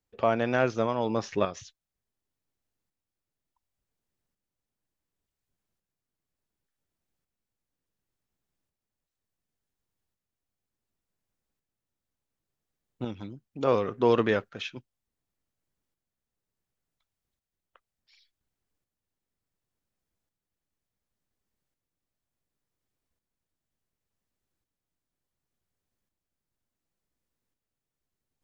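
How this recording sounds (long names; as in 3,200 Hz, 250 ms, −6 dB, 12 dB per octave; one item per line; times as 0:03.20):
tremolo saw up 0.69 Hz, depth 50%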